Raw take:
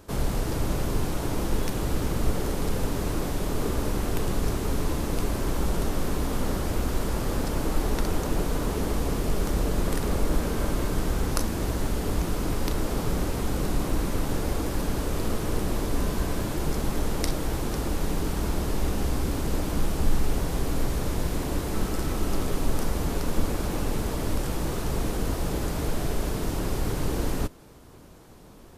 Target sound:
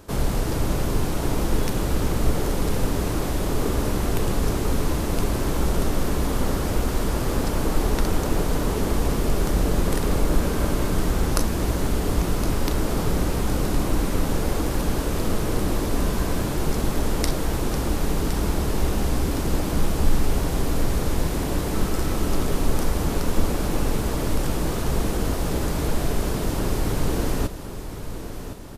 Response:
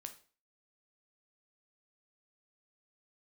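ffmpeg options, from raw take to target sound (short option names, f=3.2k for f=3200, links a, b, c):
-af "aecho=1:1:1064|2128|3192|4256|5320|6384:0.266|0.144|0.0776|0.0419|0.0226|0.0122,volume=3.5dB"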